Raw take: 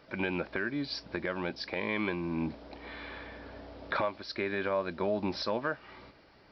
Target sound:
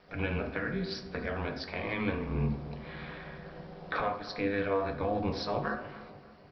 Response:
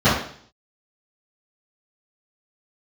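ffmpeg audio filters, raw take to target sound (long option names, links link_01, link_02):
-filter_complex "[0:a]aeval=exprs='val(0)*sin(2*PI*100*n/s)':channel_layout=same,asplit=2[link_01][link_02];[link_02]adelay=291,lowpass=frequency=1200:poles=1,volume=-13.5dB,asplit=2[link_03][link_04];[link_04]adelay=291,lowpass=frequency=1200:poles=1,volume=0.49,asplit=2[link_05][link_06];[link_06]adelay=291,lowpass=frequency=1200:poles=1,volume=0.49,asplit=2[link_07][link_08];[link_08]adelay=291,lowpass=frequency=1200:poles=1,volume=0.49,asplit=2[link_09][link_10];[link_10]adelay=291,lowpass=frequency=1200:poles=1,volume=0.49[link_11];[link_01][link_03][link_05][link_07][link_09][link_11]amix=inputs=6:normalize=0,asplit=2[link_12][link_13];[1:a]atrim=start_sample=2205[link_14];[link_13][link_14]afir=irnorm=-1:irlink=0,volume=-25.5dB[link_15];[link_12][link_15]amix=inputs=2:normalize=0"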